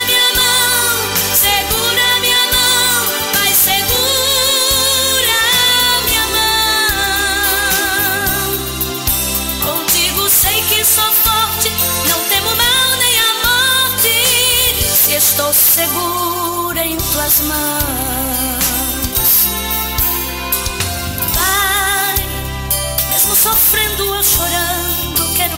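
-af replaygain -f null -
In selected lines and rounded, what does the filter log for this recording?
track_gain = -7.4 dB
track_peak = 0.302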